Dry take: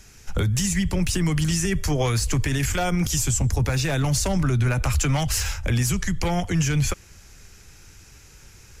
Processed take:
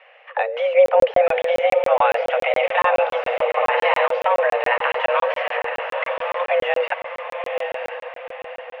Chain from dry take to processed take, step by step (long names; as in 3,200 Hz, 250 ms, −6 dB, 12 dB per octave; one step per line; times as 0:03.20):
0:00.74–0:01.21: spectral tilt −2.5 dB per octave
0:03.18–0:04.06: flutter between parallel walls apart 9.4 metres, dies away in 0.84 s
0:05.41–0:06.40: compressor whose output falls as the input rises −30 dBFS, ratio −1
feedback delay with all-pass diffusion 963 ms, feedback 44%, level −5.5 dB
single-sideband voice off tune +350 Hz 180–2,400 Hz
regular buffer underruns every 0.14 s, samples 1,024, zero, from 0:00.86
level +7.5 dB